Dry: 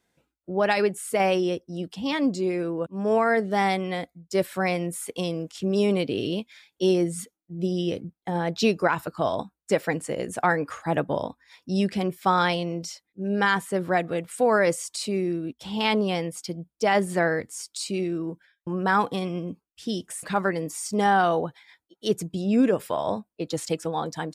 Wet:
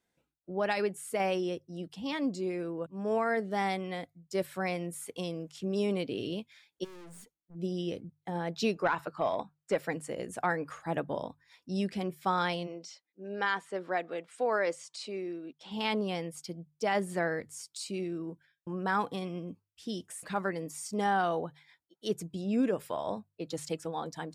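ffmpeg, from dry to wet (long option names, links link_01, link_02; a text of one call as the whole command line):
ffmpeg -i in.wav -filter_complex "[0:a]asplit=3[link_01][link_02][link_03];[link_01]afade=type=out:start_time=6.83:duration=0.02[link_04];[link_02]aeval=exprs='(tanh(112*val(0)+0.6)-tanh(0.6))/112':channel_layout=same,afade=type=in:start_time=6.83:duration=0.02,afade=type=out:start_time=7.54:duration=0.02[link_05];[link_03]afade=type=in:start_time=7.54:duration=0.02[link_06];[link_04][link_05][link_06]amix=inputs=3:normalize=0,asettb=1/sr,asplit=3[link_07][link_08][link_09];[link_07]atrim=end=8.754[link_10];[link_08]atrim=start=8.75:end=9.76,asetpts=PTS-STARTPTS,afade=type=in:duration=0.004:curve=qsin,afade=type=out:start_time=1.006:duration=0.004:curve=qsin,asplit=2[link_11][link_12];[link_12]highpass=frequency=720:poles=1,volume=12dB,asoftclip=type=tanh:threshold=-8dB[link_13];[link_11][link_13]amix=inputs=2:normalize=0,lowpass=frequency=1800:poles=1,volume=-6dB[link_14];[link_09]atrim=start=9.756[link_15];[link_10][link_14]acrossfade=duration=0.004:curve1=hsin:curve2=qsin[link_16];[link_16][link_15]acrossfade=duration=0.004:curve1=qsin:curve2=hsin,asplit=3[link_17][link_18][link_19];[link_17]afade=type=out:start_time=12.66:duration=0.02[link_20];[link_18]highpass=330,lowpass=5700,afade=type=in:start_time=12.66:duration=0.02,afade=type=out:start_time=15.7:duration=0.02[link_21];[link_19]afade=type=in:start_time=15.7:duration=0.02[link_22];[link_20][link_21][link_22]amix=inputs=3:normalize=0,bandreject=frequency=50:width_type=h:width=6,bandreject=frequency=100:width_type=h:width=6,bandreject=frequency=150:width_type=h:width=6,volume=-8dB" out.wav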